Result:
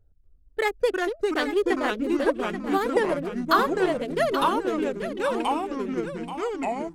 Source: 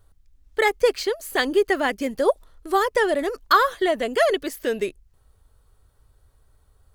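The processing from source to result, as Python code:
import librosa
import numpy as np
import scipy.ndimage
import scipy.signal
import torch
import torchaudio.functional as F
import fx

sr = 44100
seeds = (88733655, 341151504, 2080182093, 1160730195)

y = fx.wiener(x, sr, points=41)
y = fx.echo_pitch(y, sr, ms=241, semitones=-3, count=3, db_per_echo=-3.0)
y = y + 10.0 ** (-10.5 / 20.0) * np.pad(y, (int(832 * sr / 1000.0), 0))[:len(y)]
y = y * 10.0 ** (-4.0 / 20.0)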